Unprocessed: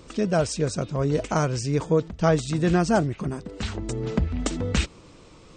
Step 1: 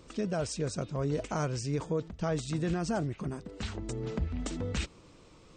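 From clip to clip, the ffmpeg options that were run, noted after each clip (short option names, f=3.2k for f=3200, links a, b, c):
-af "alimiter=limit=-15.5dB:level=0:latency=1:release=32,volume=-7dB"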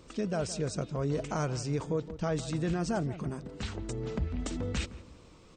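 -filter_complex "[0:a]asplit=2[a][b];[b]adelay=166,lowpass=f=1k:p=1,volume=-13dB,asplit=2[c][d];[d]adelay=166,lowpass=f=1k:p=1,volume=0.41,asplit=2[e][f];[f]adelay=166,lowpass=f=1k:p=1,volume=0.41,asplit=2[g][h];[h]adelay=166,lowpass=f=1k:p=1,volume=0.41[i];[a][c][e][g][i]amix=inputs=5:normalize=0"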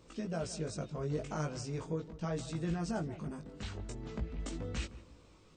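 -af "flanger=delay=17.5:depth=2.2:speed=0.41,volume=-2.5dB"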